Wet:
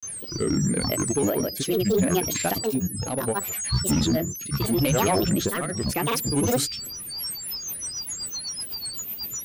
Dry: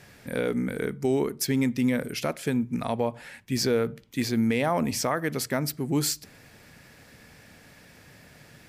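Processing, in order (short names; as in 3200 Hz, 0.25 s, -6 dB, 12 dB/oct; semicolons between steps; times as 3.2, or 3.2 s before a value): varispeed -8%; whine 8500 Hz -31 dBFS; grains, grains 24/s, pitch spread up and down by 12 st; in parallel at -9.5 dB: sine folder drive 8 dB, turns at -12.5 dBFS; on the sum: rotary speaker horn 0.75 Hz, later 8 Hz, at 6.97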